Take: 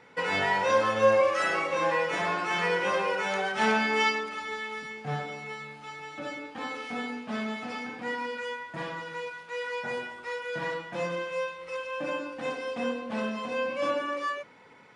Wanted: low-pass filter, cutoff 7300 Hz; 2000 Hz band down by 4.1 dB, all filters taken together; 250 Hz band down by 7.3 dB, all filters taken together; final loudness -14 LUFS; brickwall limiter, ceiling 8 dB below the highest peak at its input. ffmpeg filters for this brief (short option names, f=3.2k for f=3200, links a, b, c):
-af "lowpass=7.3k,equalizer=f=250:t=o:g=-9,equalizer=f=2k:t=o:g=-5,volume=19dB,alimiter=limit=-1.5dB:level=0:latency=1"